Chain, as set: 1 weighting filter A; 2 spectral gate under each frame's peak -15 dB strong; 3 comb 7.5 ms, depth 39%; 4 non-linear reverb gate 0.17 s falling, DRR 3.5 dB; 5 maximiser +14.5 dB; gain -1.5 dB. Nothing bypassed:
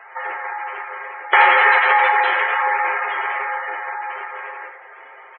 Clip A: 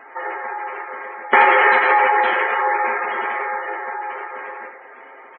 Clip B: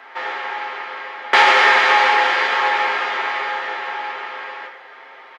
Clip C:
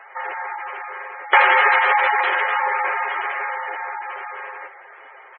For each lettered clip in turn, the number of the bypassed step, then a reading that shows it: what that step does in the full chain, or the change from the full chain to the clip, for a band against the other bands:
1, 500 Hz band +6.0 dB; 2, 4 kHz band +8.0 dB; 4, crest factor change +2.0 dB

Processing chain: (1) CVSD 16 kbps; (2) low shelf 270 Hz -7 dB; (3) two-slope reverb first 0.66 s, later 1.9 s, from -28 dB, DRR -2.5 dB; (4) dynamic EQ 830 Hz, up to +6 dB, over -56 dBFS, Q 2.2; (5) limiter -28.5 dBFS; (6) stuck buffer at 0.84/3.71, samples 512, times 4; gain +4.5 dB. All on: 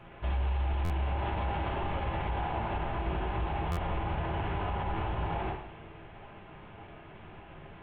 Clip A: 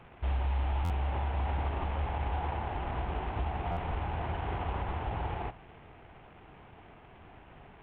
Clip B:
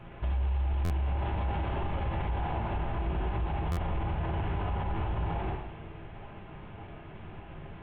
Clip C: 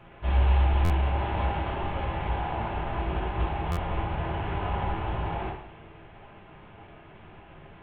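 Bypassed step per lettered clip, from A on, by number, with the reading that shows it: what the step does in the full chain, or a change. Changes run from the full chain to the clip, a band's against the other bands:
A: 3, momentary loudness spread change +4 LU; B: 2, 125 Hz band +4.5 dB; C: 5, mean gain reduction 2.5 dB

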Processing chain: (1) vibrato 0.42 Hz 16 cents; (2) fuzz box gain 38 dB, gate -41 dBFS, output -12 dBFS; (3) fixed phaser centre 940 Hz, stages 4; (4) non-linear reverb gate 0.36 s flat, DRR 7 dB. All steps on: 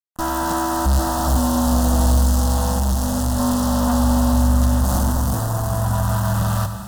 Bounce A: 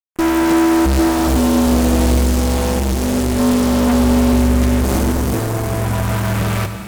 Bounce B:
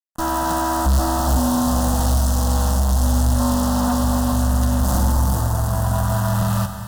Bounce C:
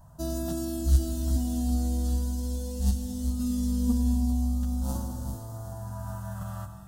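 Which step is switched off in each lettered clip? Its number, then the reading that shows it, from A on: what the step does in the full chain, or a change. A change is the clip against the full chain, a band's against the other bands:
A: 3, 1 kHz band -5.0 dB; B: 1, momentary loudness spread change -2 LU; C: 2, distortion -4 dB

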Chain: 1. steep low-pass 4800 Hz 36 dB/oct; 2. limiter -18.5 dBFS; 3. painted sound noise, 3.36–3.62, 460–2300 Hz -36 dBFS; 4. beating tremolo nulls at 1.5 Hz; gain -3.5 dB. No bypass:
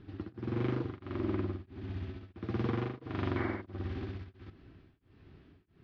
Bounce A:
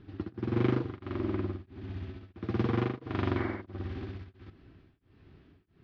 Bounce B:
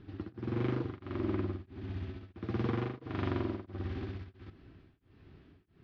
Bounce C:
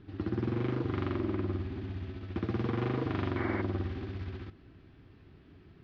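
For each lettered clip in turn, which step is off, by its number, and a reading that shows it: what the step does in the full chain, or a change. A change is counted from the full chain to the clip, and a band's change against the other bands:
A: 2, crest factor change +4.0 dB; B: 3, 2 kHz band -2.0 dB; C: 4, momentary loudness spread change -3 LU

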